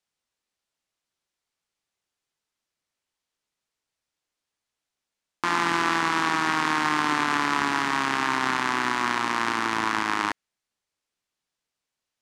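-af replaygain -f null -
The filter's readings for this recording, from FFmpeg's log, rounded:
track_gain = +8.4 dB
track_peak = 0.327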